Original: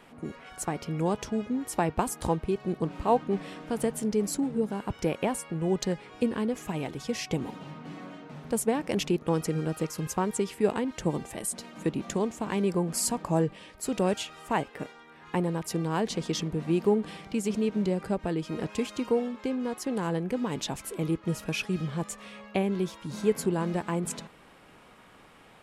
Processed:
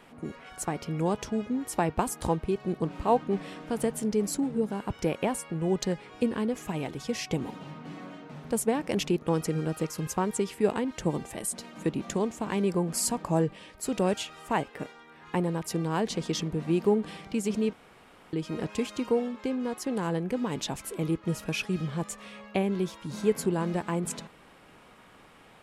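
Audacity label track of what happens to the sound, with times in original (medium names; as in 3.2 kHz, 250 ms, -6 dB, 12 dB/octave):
17.730000	18.330000	room tone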